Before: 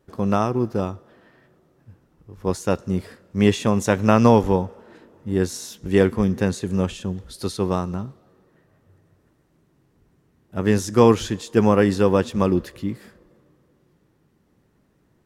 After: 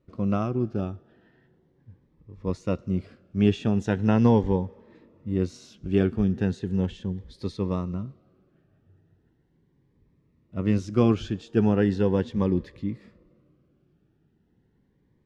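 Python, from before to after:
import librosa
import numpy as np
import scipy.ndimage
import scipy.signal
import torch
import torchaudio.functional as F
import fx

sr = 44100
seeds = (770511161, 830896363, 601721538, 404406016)

y = scipy.signal.sosfilt(scipy.signal.butter(2, 3000.0, 'lowpass', fs=sr, output='sos'), x)
y = fx.peak_eq(y, sr, hz=960.0, db=-5.5, octaves=2.5)
y = fx.notch_cascade(y, sr, direction='rising', hz=0.38)
y = y * 10.0 ** (-2.0 / 20.0)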